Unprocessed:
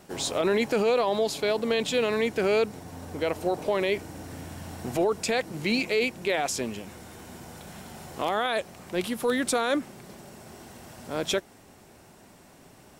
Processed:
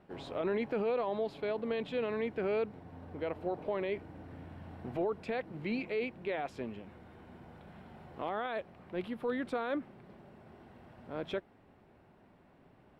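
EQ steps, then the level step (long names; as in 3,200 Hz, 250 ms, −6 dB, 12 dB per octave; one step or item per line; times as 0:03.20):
high-frequency loss of the air 470 metres
high-shelf EQ 6,400 Hz +5 dB
−7.5 dB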